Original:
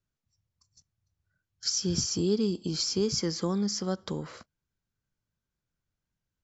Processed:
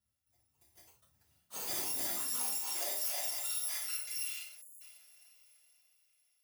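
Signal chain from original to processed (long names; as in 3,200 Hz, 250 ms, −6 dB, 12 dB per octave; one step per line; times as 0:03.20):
samples in bit-reversed order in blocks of 256 samples
parametric band 480 Hz −10 dB 0.2 octaves
reversed playback
downward compressor 6 to 1, threshold −37 dBFS, peak gain reduction 14 dB
reversed playback
high-pass filter sweep 81 Hz → 2,500 Hz, 0:01.36–0:04.28
on a send: feedback delay with all-pass diffusion 513 ms, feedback 41%, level −15.5 dB
on the sum: reverb whose tail is shaped and stops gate 170 ms falling, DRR −4.5 dB
delay with pitch and tempo change per echo 295 ms, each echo +5 semitones, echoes 3
time-frequency box erased 0:04.61–0:04.81, 640–6,500 Hz
level −4 dB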